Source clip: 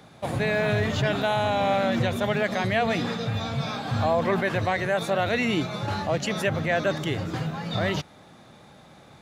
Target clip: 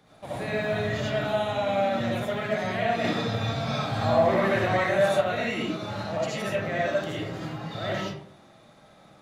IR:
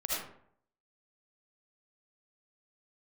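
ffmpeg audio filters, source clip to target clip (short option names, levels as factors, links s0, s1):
-filter_complex "[1:a]atrim=start_sample=2205[s0];[0:a][s0]afir=irnorm=-1:irlink=0,asettb=1/sr,asplit=3[s1][s2][s3];[s1]atrim=end=3.044[s4];[s2]atrim=start=3.04:end=5.21,asetpts=PTS-STARTPTS,afade=t=in:d=0.004:c=qsin,afade=t=out:st=2.166:d=0.004:c=qsin,acontrast=22[s5];[s3]atrim=start=5.206[s6];[s4][s5]acrossfade=d=0.004:c1=hsin:c2=qsin[s7];[s7][s6]acrossfade=d=0.004:c1=qsin:c2=hsin,volume=0.376"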